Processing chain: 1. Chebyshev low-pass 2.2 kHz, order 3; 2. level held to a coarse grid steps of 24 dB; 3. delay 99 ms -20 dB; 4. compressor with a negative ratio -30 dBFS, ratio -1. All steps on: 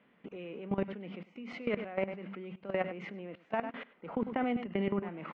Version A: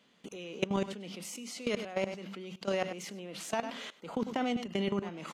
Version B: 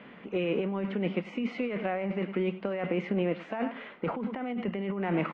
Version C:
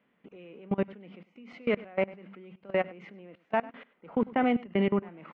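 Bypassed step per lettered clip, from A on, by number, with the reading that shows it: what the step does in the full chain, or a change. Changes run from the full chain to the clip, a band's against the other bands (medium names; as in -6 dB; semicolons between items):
1, 4 kHz band +10.0 dB; 2, crest factor change -4.0 dB; 4, momentary loudness spread change +9 LU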